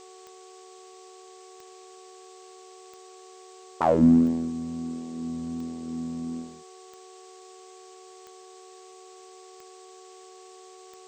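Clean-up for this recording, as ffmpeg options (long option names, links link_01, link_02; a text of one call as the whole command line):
ffmpeg -i in.wav -af "adeclick=threshold=4,bandreject=frequency=373:width_type=h:width=4,bandreject=frequency=746:width_type=h:width=4,bandreject=frequency=1119:width_type=h:width=4,bandreject=frequency=450:width=30,afftdn=noise_reduction=28:noise_floor=-49" out.wav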